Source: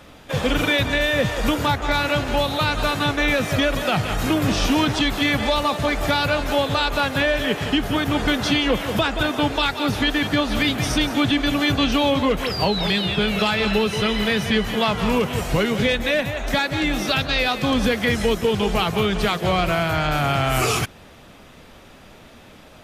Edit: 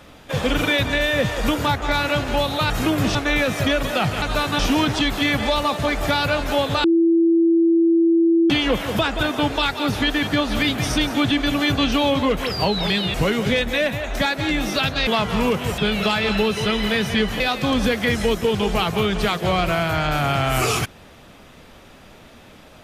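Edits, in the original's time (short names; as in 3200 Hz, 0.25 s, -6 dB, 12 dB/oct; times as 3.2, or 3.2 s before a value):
2.7–3.07 swap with 4.14–4.59
6.84–8.5 bleep 333 Hz -12.5 dBFS
13.14–14.76 swap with 15.47–17.4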